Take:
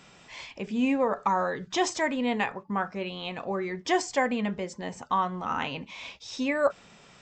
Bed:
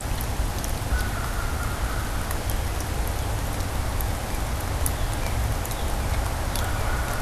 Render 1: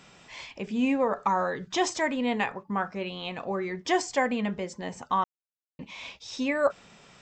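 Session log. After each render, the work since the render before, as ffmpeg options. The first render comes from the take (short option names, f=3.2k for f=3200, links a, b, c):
-filter_complex "[0:a]asplit=3[a][b][c];[a]atrim=end=5.24,asetpts=PTS-STARTPTS,afade=t=out:st=5.236:d=0.004:c=hsin[d];[b]atrim=start=5.24:end=5.79,asetpts=PTS-STARTPTS,volume=0[e];[c]atrim=start=5.79,asetpts=PTS-STARTPTS,afade=t=in:d=0.004:c=hsin[f];[d][e][f]concat=n=3:v=0:a=1"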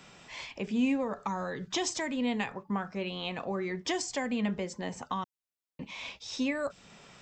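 -filter_complex "[0:a]acrossover=split=270|3000[a][b][c];[b]acompressor=threshold=-33dB:ratio=6[d];[a][d][c]amix=inputs=3:normalize=0"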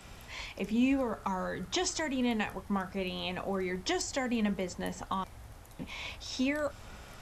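-filter_complex "[1:a]volume=-24.5dB[a];[0:a][a]amix=inputs=2:normalize=0"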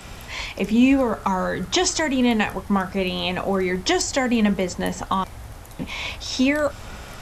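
-af "volume=11.5dB"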